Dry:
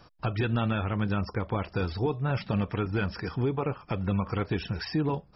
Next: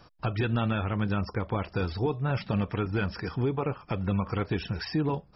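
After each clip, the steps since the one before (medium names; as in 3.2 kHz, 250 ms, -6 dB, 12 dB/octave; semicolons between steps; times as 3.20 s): no audible change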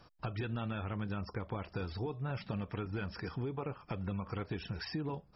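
compression 3:1, threshold -30 dBFS, peak gain reduction 6 dB; trim -5.5 dB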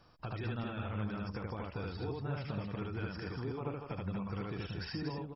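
loudspeakers at several distances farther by 26 m -1 dB, 81 m -5 dB; trim -3.5 dB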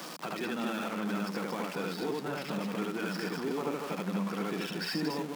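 jump at every zero crossing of -41 dBFS; Chebyshev high-pass 170 Hz, order 5; trim +5.5 dB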